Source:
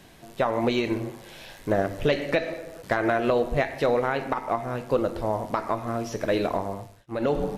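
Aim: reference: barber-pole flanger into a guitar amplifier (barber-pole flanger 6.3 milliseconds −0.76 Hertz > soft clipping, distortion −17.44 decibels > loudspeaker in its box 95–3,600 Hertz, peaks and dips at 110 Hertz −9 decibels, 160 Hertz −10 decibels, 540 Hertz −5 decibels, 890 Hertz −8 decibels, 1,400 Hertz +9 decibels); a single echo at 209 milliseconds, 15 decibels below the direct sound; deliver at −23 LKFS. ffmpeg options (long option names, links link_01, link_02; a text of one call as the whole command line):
ffmpeg -i in.wav -filter_complex "[0:a]aecho=1:1:209:0.178,asplit=2[link_01][link_02];[link_02]adelay=6.3,afreqshift=-0.76[link_03];[link_01][link_03]amix=inputs=2:normalize=1,asoftclip=threshold=-18.5dB,highpass=95,equalizer=frequency=110:width_type=q:width=4:gain=-9,equalizer=frequency=160:width_type=q:width=4:gain=-10,equalizer=frequency=540:width_type=q:width=4:gain=-5,equalizer=frequency=890:width_type=q:width=4:gain=-8,equalizer=frequency=1400:width_type=q:width=4:gain=9,lowpass=frequency=3600:width=0.5412,lowpass=frequency=3600:width=1.3066,volume=9dB" out.wav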